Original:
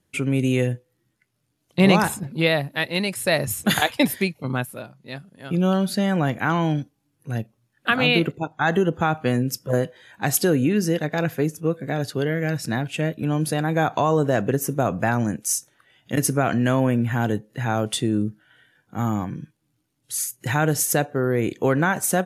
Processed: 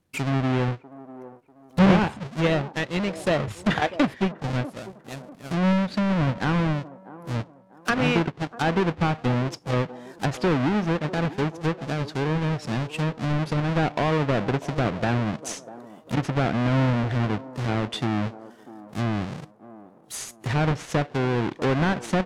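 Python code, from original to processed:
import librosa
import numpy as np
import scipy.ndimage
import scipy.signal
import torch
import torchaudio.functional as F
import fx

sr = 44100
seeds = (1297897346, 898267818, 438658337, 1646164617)

y = fx.halfwave_hold(x, sr)
y = fx.env_lowpass_down(y, sr, base_hz=2800.0, full_db=-14.5)
y = fx.echo_wet_bandpass(y, sr, ms=644, feedback_pct=36, hz=520.0, wet_db=-14)
y = y * 10.0 ** (-6.5 / 20.0)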